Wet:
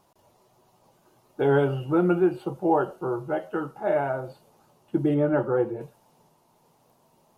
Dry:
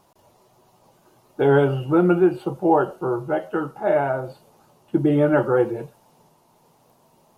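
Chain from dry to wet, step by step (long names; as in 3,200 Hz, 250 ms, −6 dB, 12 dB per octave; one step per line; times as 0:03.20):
0:05.14–0:05.81: high-shelf EQ 2,000 Hz −9 dB
level −4.5 dB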